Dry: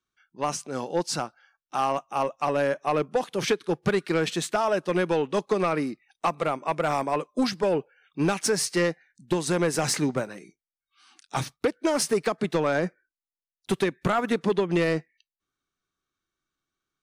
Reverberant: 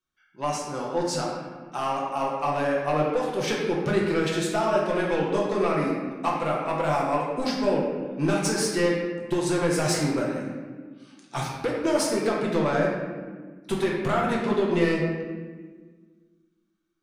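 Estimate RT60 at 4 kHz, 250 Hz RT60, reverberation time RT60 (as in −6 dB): 0.90 s, 2.3 s, 1.5 s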